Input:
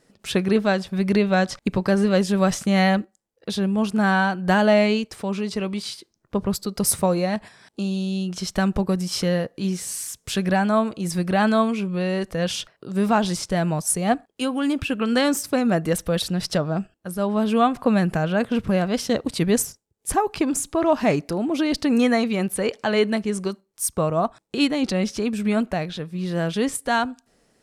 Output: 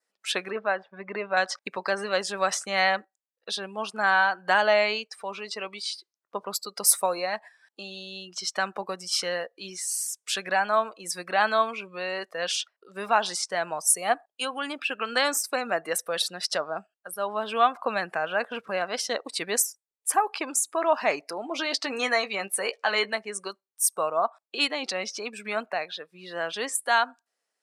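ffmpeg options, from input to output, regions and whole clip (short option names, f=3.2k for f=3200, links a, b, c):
-filter_complex "[0:a]asettb=1/sr,asplit=3[a][b][c];[a]atrim=end=0.504[d];[b]atrim=start=0.5:end=1.37,asetpts=PTS-STARTPTS,afade=t=in:d=0.004:c=qsin,afade=t=out:st=0.866:d=0.004:c=qsin,aeval=exprs='if(lt(val(0),0),0.708*val(0),val(0))':c=same,lowpass=2k[e];[c]atrim=start=1.366[f];[d][e]acrossfade=d=0.004:c1=hsin:c2=qsin[g];[g][f]acrossfade=d=0.004:c1=qsin:c2=hsin,asettb=1/sr,asplit=3[h][i][j];[h]atrim=end=21.434[k];[i]atrim=start=21.43:end=23.15,asetpts=PTS-STARTPTS,afade=t=in:d=0.004:c=qsin,afade=t=out:st=1.716:d=0.004:c=qsin,highshelf=f=6.6k:g=6.5,adynamicsmooth=sensitivity=8:basefreq=6.9k,asplit=2[l][m];[m]adelay=15,volume=-9dB[n];[l][n]amix=inputs=2:normalize=0,atrim=end_sample=75852[o];[j]atrim=start=23.146[p];[k][o]acrossfade=d=0.004:c1=hsin:c2=qsin[q];[q][p]acrossfade=d=0.004:c1=qsin:c2=hsin,highpass=780,adynamicequalizer=threshold=0.00355:dfrequency=3200:dqfactor=4:tfrequency=3200:tqfactor=4:attack=5:release=100:ratio=0.375:range=1.5:mode=cutabove:tftype=bell,afftdn=nr=17:nf=-41,volume=1.5dB"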